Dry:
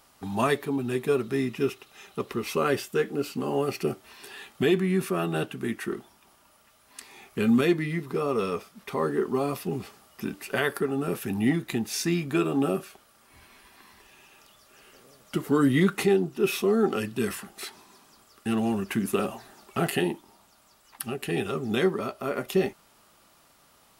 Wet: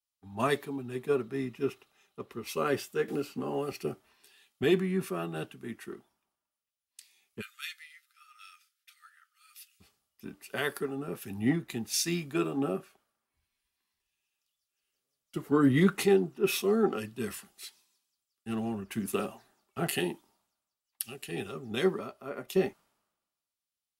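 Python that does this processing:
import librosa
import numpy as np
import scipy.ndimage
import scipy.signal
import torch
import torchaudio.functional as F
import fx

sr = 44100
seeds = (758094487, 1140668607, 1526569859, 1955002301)

y = fx.band_squash(x, sr, depth_pct=100, at=(3.08, 3.72))
y = fx.brickwall_highpass(y, sr, low_hz=1200.0, at=(7.4, 9.79), fade=0.02)
y = fx.band_widen(y, sr, depth_pct=100)
y = y * librosa.db_to_amplitude(-7.0)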